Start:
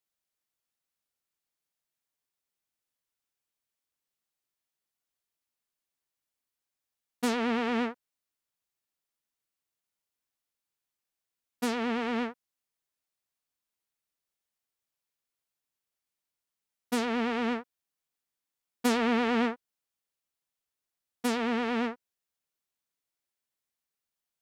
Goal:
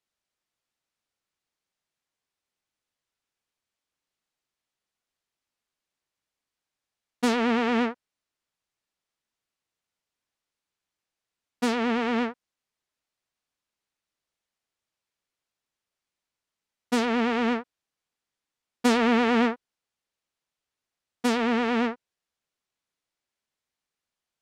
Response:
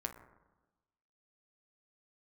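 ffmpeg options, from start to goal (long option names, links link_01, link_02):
-af "adynamicsmooth=sensitivity=5:basefreq=8000,volume=5dB"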